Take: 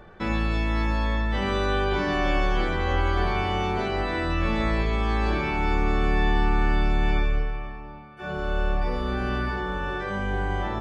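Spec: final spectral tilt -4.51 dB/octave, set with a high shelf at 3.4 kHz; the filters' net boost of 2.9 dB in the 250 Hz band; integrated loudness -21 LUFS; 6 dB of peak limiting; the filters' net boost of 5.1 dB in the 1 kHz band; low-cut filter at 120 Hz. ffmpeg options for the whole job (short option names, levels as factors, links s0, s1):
-af "highpass=120,equalizer=f=250:t=o:g=4,equalizer=f=1000:t=o:g=7,highshelf=f=3400:g=-7,volume=2,alimiter=limit=0.266:level=0:latency=1"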